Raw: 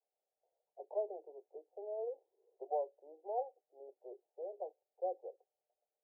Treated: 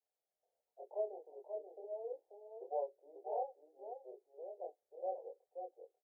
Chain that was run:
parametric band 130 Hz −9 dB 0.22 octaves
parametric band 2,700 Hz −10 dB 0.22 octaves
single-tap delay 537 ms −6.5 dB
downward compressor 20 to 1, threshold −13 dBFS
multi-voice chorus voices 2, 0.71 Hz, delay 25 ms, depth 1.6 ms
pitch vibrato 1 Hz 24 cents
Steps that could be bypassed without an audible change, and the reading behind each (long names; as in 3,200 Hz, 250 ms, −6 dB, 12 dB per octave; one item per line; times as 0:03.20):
parametric band 130 Hz: nothing at its input below 300 Hz
parametric band 2,700 Hz: nothing at its input above 960 Hz
downward compressor, threshold −13 dBFS: peak of its input −26.5 dBFS